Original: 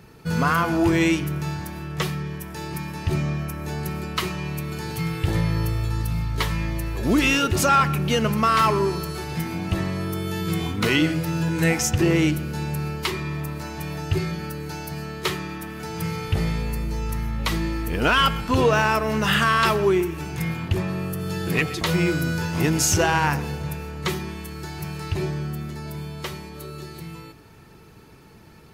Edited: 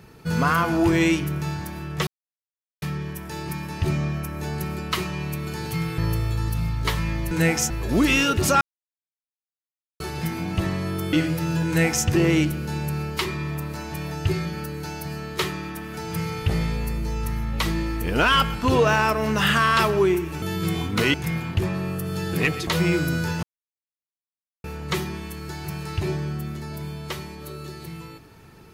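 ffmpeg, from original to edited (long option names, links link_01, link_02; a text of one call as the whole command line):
ffmpeg -i in.wav -filter_complex "[0:a]asplit=12[link_01][link_02][link_03][link_04][link_05][link_06][link_07][link_08][link_09][link_10][link_11][link_12];[link_01]atrim=end=2.07,asetpts=PTS-STARTPTS,afade=type=out:start_time=2.066:duration=0.004:curve=hsin,apad=pad_dur=0.75[link_13];[link_02]atrim=start=2.07:end=5.232,asetpts=PTS-STARTPTS,afade=type=in:duration=0.004:curve=hsin[link_14];[link_03]atrim=start=5.508:end=6.842[link_15];[link_04]atrim=start=11.528:end=11.922[link_16];[link_05]atrim=start=6.838:end=7.75,asetpts=PTS-STARTPTS,afade=type=out:start_time=0.908:duration=0.004:curve=hsin[link_17];[link_06]atrim=start=7.75:end=9.14,asetpts=PTS-STARTPTS,volume=0[link_18];[link_07]atrim=start=9.14:end=10.272,asetpts=PTS-STARTPTS,afade=type=in:duration=0.004:curve=hsin[link_19];[link_08]atrim=start=10.988:end=20.282[link_20];[link_09]atrim=start=10.268:end=10.992[link_21];[link_10]atrim=start=20.278:end=22.57,asetpts=PTS-STARTPTS,afade=type=out:start_time=2.288:duration=0.004:curve=hsin[link_22];[link_11]atrim=start=22.57:end=23.78,asetpts=PTS-STARTPTS,volume=0[link_23];[link_12]atrim=start=23.78,asetpts=PTS-STARTPTS,afade=type=in:duration=0.004:curve=hsin[link_24];[link_13][link_14]concat=n=2:v=0:a=1[link_25];[link_25][link_15]acrossfade=duration=0.004:curve1=hsin:curve2=hsin[link_26];[link_26][link_16]acrossfade=duration=0.004:curve1=hsin:curve2=hsin[link_27];[link_17][link_18][link_19]concat=n=3:v=0:a=1[link_28];[link_27][link_28]acrossfade=duration=0.004:curve1=hsin:curve2=hsin[link_29];[link_29][link_20]acrossfade=duration=0.004:curve1=hsin:curve2=hsin[link_30];[link_30][link_21]acrossfade=duration=0.004:curve1=hsin:curve2=hsin[link_31];[link_22][link_23][link_24]concat=n=3:v=0:a=1[link_32];[link_31][link_32]acrossfade=duration=0.004:curve1=hsin:curve2=hsin" out.wav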